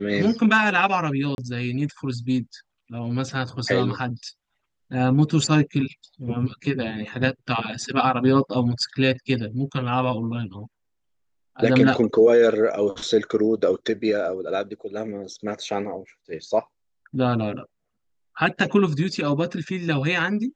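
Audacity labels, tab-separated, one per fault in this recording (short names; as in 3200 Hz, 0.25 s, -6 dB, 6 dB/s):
1.350000	1.380000	gap 31 ms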